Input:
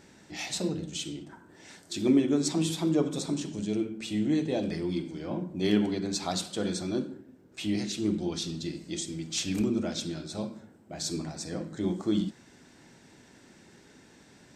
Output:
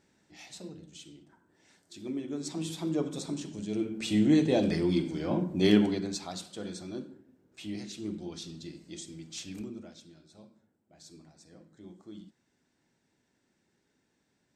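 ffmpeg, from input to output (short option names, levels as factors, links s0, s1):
-af "volume=1.58,afade=t=in:st=2.14:d=0.85:silence=0.354813,afade=t=in:st=3.69:d=0.44:silence=0.375837,afade=t=out:st=5.63:d=0.64:silence=0.237137,afade=t=out:st=9.23:d=0.78:silence=0.281838"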